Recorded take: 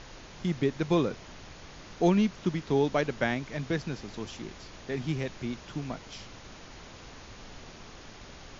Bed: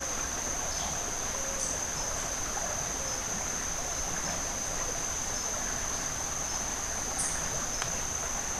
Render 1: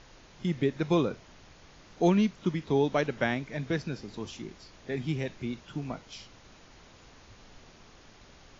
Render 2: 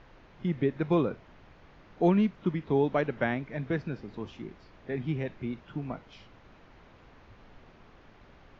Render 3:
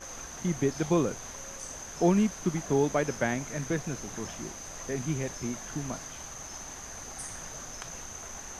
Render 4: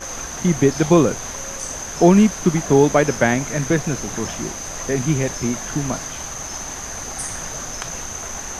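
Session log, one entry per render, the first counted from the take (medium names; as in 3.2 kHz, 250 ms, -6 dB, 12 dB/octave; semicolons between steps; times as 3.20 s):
noise print and reduce 7 dB
low-pass 2.3 kHz 12 dB/octave
add bed -9 dB
trim +12 dB; peak limiter -1 dBFS, peak gain reduction 1 dB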